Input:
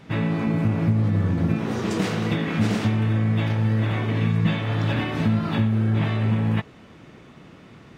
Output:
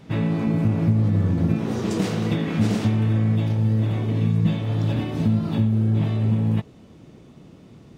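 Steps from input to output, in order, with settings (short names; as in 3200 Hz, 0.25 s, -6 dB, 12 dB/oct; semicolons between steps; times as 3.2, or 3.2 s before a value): bell 1700 Hz -6.5 dB 2.1 oct, from 3.36 s -13 dB; gain +1.5 dB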